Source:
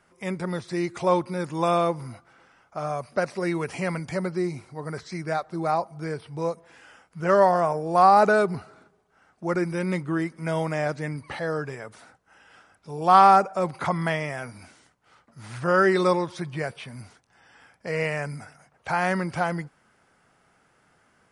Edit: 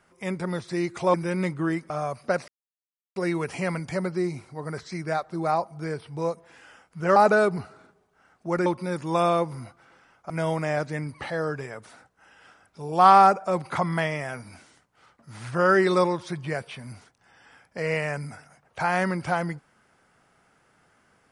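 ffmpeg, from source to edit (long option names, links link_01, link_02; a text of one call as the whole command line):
ffmpeg -i in.wav -filter_complex "[0:a]asplit=7[link_01][link_02][link_03][link_04][link_05][link_06][link_07];[link_01]atrim=end=1.142[link_08];[link_02]atrim=start=9.628:end=10.392[link_09];[link_03]atrim=start=2.778:end=3.36,asetpts=PTS-STARTPTS,afade=type=out:start_time=0.578:duration=0.004:curve=hsin,apad=pad_dur=0.68[link_10];[link_04]atrim=start=3.36:end=7.362,asetpts=PTS-STARTPTS,afade=type=in:duration=0.004:curve=hsin[link_11];[link_05]atrim=start=8.128:end=9.632[link_12];[link_06]atrim=start=1.138:end=2.782[link_13];[link_07]atrim=start=10.388[link_14];[link_08][link_09]acrossfade=duration=0.004:curve1=hsin:curve2=hsin[link_15];[link_10][link_11]concat=n=2:v=0:a=1[link_16];[link_15][link_16]acrossfade=duration=0.004:curve1=hsin:curve2=hsin[link_17];[link_17][link_12]acrossfade=duration=0.004:curve1=hsin:curve2=hsin[link_18];[link_18][link_13]acrossfade=duration=0.004:curve1=hsin:curve2=hsin[link_19];[link_19][link_14]acrossfade=duration=0.004:curve1=hsin:curve2=hsin" out.wav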